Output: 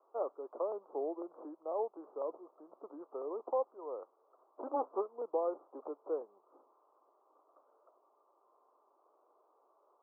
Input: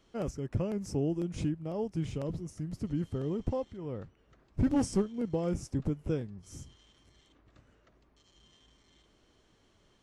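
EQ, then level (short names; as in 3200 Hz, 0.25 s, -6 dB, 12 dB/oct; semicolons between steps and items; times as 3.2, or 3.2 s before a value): Bessel high-pass 740 Hz, order 8; steep low-pass 1200 Hz 72 dB/oct; +7.5 dB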